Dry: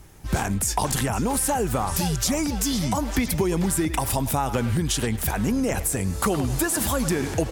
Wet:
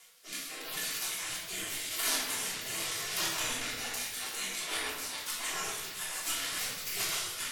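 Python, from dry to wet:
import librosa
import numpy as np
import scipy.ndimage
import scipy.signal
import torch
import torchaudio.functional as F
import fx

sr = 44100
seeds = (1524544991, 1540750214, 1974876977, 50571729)

y = scipy.signal.sosfilt(scipy.signal.butter(2, 10000.0, 'lowpass', fs=sr, output='sos'), x)
y = fx.spec_gate(y, sr, threshold_db=-30, keep='weak')
y = fx.formant_shift(y, sr, semitones=2)
y = fx.rotary_switch(y, sr, hz=0.85, then_hz=7.0, switch_at_s=3.62)
y = fx.room_shoebox(y, sr, seeds[0], volume_m3=610.0, walls='mixed', distance_m=3.2)
y = F.gain(torch.from_numpy(y), 3.5).numpy()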